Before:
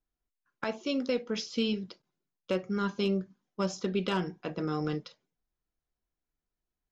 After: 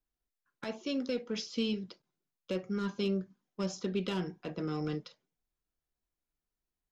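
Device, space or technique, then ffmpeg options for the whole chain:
one-band saturation: -filter_complex "[0:a]acrossover=split=500|2600[a][b][c];[b]asoftclip=type=tanh:threshold=-38dB[d];[a][d][c]amix=inputs=3:normalize=0,volume=-2.5dB"

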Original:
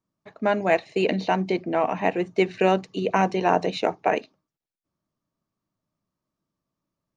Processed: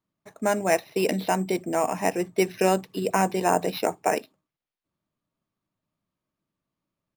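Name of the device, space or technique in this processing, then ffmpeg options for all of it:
crushed at another speed: -af "asetrate=35280,aresample=44100,acrusher=samples=7:mix=1:aa=0.000001,asetrate=55125,aresample=44100,volume=-1.5dB"

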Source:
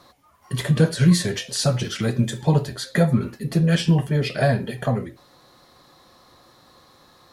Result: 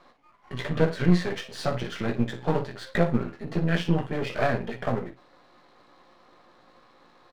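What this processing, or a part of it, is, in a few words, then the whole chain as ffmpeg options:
crystal radio: -filter_complex "[0:a]asettb=1/sr,asplit=3[a][b][c];[a]atrim=end=3.314[d];[b]atrim=start=3.31:end=4.11,asetpts=PTS-STARTPTS,afade=t=in:d=0.004:c=qsin,afade=t=out:st=0.796:d=0.004:c=qsin,highpass=f=78:w=0.5412,highpass=f=78:w=1.3066[e];[c]atrim=start=4.106[f];[d][e]acrossfade=d=0.004:c1=hsin:c2=qsin[g];[g][f]acrossfade=d=0.004:c1=qsin:c2=hsin,highpass=210,lowpass=2.6k,aecho=1:1:17|56:0.531|0.282,aeval=exprs='if(lt(val(0),0),0.251*val(0),val(0))':c=same"

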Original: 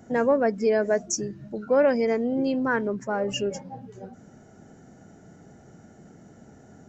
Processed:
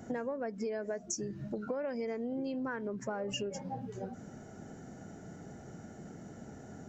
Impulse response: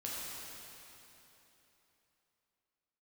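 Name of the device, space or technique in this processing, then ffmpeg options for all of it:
serial compression, peaks first: -af "acompressor=threshold=-31dB:ratio=6,acompressor=threshold=-38dB:ratio=2,volume=1.5dB"

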